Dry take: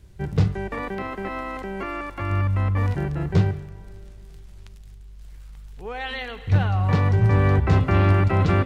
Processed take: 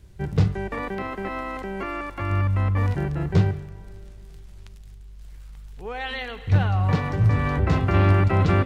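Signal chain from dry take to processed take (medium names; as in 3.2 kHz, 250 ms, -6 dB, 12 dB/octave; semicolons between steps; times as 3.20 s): 6.90–7.94 s: de-hum 97.34 Hz, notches 37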